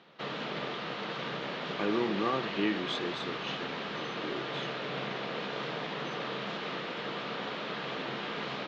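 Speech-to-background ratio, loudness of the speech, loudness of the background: 1.5 dB, -35.0 LUFS, -36.5 LUFS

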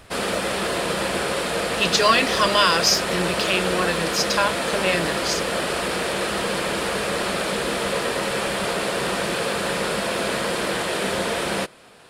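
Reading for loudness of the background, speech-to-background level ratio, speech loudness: -23.5 LUFS, 2.5 dB, -21.0 LUFS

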